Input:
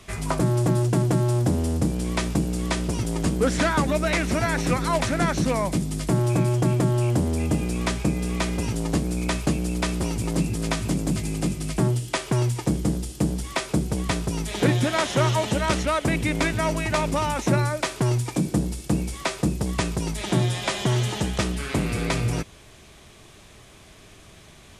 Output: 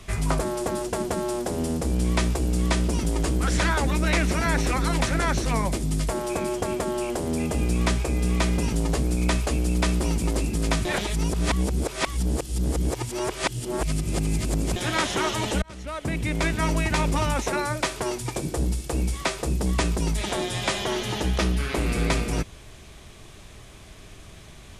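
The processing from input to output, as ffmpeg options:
-filter_complex "[0:a]asettb=1/sr,asplit=3[a][b][c];[a]atrim=end=20.794[d];[b]atrim=start=20.79:end=21.77,asetpts=PTS-STARTPTS,afade=t=in:d=0.004:c=qsin,afade=t=out:st=0.976:d=0.004:c=qsin,equalizer=f=8k:w=3.1:g=-7.5[e];[c]atrim=start=21.766[f];[d][e]acrossfade=d=0.004:c1=hsin:c2=qsin[g];[g][f]acrossfade=d=0.004:c1=qsin:c2=hsin,asplit=4[h][i][j][k];[h]atrim=end=10.852[l];[i]atrim=start=10.848:end=14.762,asetpts=PTS-STARTPTS,areverse[m];[j]atrim=start=14.758:end=15.62,asetpts=PTS-STARTPTS,afade=t=out:st=0.858:d=0.004:c=hsin[n];[k]atrim=start=15.62,asetpts=PTS-STARTPTS,afade=t=in:d=1.09[o];[l][m]acrossfade=d=0.004:c1=hsin:c2=hsin[p];[n][o]concat=n=2:v=0:a=1[q];[p][q]acrossfade=d=0.004:c1=hsin:c2=hsin,afftfilt=real='re*lt(hypot(re,im),0.447)':imag='im*lt(hypot(re,im),0.447)':win_size=1024:overlap=0.75,lowshelf=f=76:g=9,acontrast=34,volume=-4.5dB"

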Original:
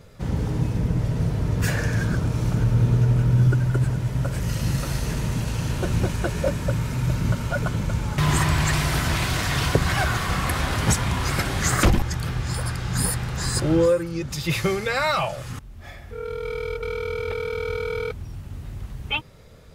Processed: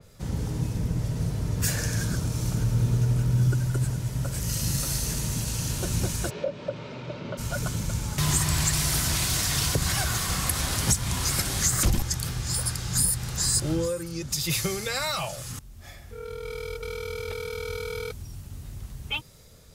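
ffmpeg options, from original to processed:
-filter_complex "[0:a]asplit=3[a][b][c];[a]afade=t=out:st=6.29:d=0.02[d];[b]highpass=250,equalizer=f=410:t=q:w=4:g=5,equalizer=f=580:t=q:w=4:g=9,equalizer=f=1.7k:t=q:w=4:g=-5,lowpass=f=3.5k:w=0.5412,lowpass=f=3.5k:w=1.3066,afade=t=in:st=6.29:d=0.02,afade=t=out:st=7.37:d=0.02[e];[c]afade=t=in:st=7.37:d=0.02[f];[d][e][f]amix=inputs=3:normalize=0,bass=f=250:g=2,treble=f=4k:g=11,acrossover=split=190[g][h];[h]acompressor=threshold=-19dB:ratio=6[i];[g][i]amix=inputs=2:normalize=0,adynamicequalizer=threshold=0.0141:dfrequency=3500:dqfactor=0.7:tfrequency=3500:tqfactor=0.7:attack=5:release=100:ratio=0.375:range=2.5:mode=boostabove:tftype=highshelf,volume=-6.5dB"

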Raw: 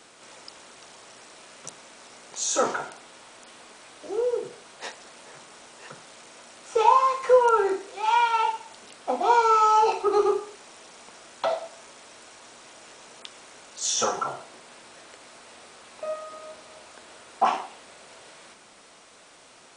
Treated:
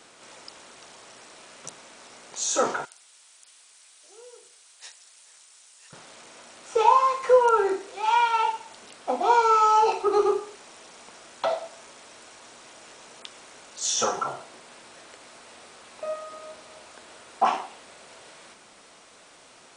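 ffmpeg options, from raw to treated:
-filter_complex "[0:a]asettb=1/sr,asplit=3[a][b][c];[a]atrim=end=2.854[d];[b]atrim=start=2.85:end=5.93,asetpts=PTS-STARTPTS,afade=t=in:d=0.004:c=qsin,afade=t=out:st=3.076:d=0.004:c=qsin,aderivative[e];[c]atrim=start=5.926[f];[d][e]acrossfade=d=0.004:c1=hsin:c2=qsin[g];[g][f]acrossfade=d=0.004:c1=qsin:c2=hsin"

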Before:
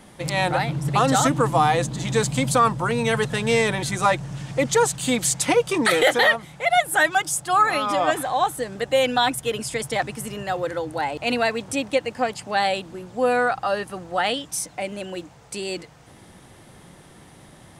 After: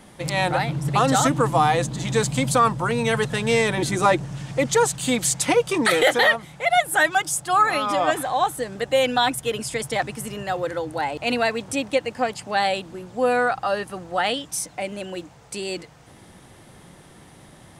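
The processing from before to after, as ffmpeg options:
-filter_complex "[0:a]asettb=1/sr,asplit=3[a][b][c];[a]atrim=end=3.774[d];[b]atrim=start=3.77:end=4.25,asetpts=PTS-STARTPTS,afade=t=in:d=0.004:c=qsin,afade=t=out:st=0.476:d=0.004:c=qsin,equalizer=f=330:w=1.5:g=10[e];[c]atrim=start=4.246[f];[d][e]acrossfade=d=0.004:c1=hsin:c2=qsin[g];[g][f]acrossfade=d=0.004:c1=qsin:c2=hsin"

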